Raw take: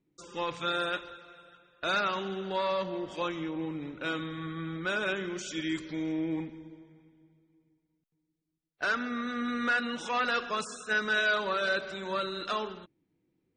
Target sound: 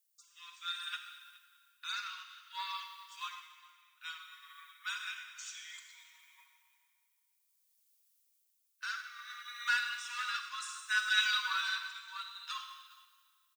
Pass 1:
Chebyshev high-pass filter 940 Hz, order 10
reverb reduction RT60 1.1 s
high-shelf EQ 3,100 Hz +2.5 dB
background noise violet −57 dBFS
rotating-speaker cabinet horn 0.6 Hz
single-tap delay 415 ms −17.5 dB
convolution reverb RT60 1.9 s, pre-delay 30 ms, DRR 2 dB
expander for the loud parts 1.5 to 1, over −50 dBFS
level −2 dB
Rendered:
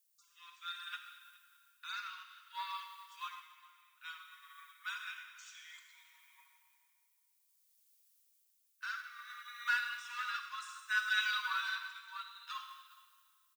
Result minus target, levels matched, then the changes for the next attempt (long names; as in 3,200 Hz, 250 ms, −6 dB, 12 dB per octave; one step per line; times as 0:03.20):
8,000 Hz band −5.5 dB
change: high-shelf EQ 3,100 Hz +13 dB